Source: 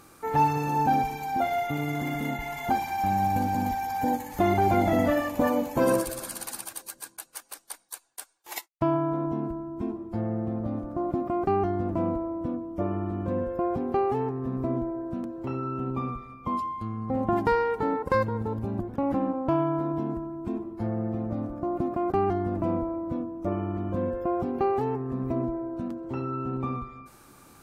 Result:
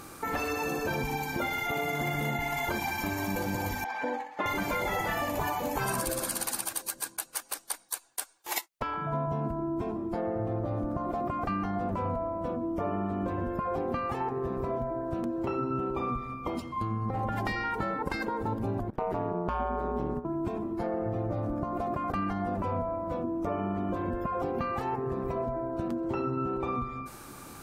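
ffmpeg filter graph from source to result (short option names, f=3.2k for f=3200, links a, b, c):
-filter_complex "[0:a]asettb=1/sr,asplit=3[a][b][c];[a]atrim=end=3.844[d];[b]atrim=start=3.84:end=4.46,asetpts=PTS-STARTPTS,afade=t=in:d=0.004:c=qsin,afade=t=out:st=0.616:d=0.004:c=qsin,agate=range=-33dB:threshold=-33dB:ratio=3:release=100:detection=peak,highpass=580,lowpass=2.7k[e];[c]atrim=start=4.456[f];[d][e]acrossfade=d=0.004:c1=hsin:c2=qsin[g];[g][f]acrossfade=d=0.004:c1=qsin:c2=hsin,asettb=1/sr,asplit=3[h][i][j];[h]atrim=end=18.904[k];[i]atrim=start=18.9:end=20.25,asetpts=PTS-STARTPTS,afade=t=in:d=0.004:c=qsin,afade=t=out:st=1.346:d=0.004:c=qsin,agate=range=-37dB:threshold=-33dB:ratio=16:release=100:detection=peak,acompressor=mode=upward:threshold=-35dB:ratio=2.5:attack=3.2:release=140:knee=2.83:detection=peak,aeval=exprs='val(0)*sin(2*PI*88*n/s)':c=same[l];[j]atrim=start=20.246[m];[k][l]acrossfade=d=0.004:c1=hsin:c2=qsin[n];[n][m]acrossfade=d=0.004:c1=qsin:c2=hsin,afftfilt=real='re*lt(hypot(re,im),0.2)':imag='im*lt(hypot(re,im),0.2)':win_size=1024:overlap=0.75,acompressor=threshold=-36dB:ratio=2.5,volume=7dB"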